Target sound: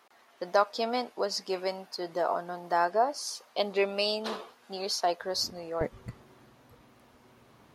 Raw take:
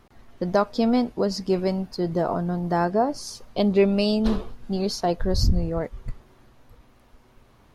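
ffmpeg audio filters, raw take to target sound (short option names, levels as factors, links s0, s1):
-af "asetnsamples=n=441:p=0,asendcmd='5.81 highpass f 120',highpass=650"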